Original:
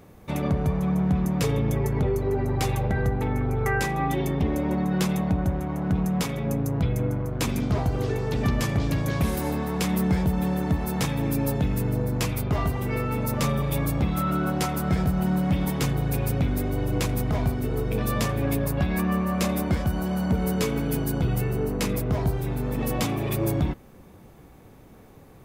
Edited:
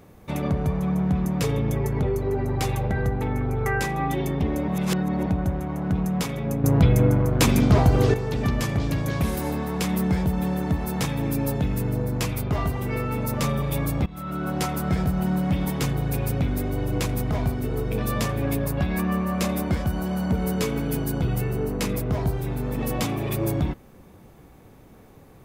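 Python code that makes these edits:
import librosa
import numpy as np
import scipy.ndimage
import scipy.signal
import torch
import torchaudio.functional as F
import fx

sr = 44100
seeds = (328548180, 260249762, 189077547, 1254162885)

y = fx.edit(x, sr, fx.reverse_span(start_s=4.68, length_s=0.58),
    fx.clip_gain(start_s=6.64, length_s=1.5, db=7.5),
    fx.fade_in_from(start_s=14.06, length_s=0.55, floor_db=-19.0), tone=tone)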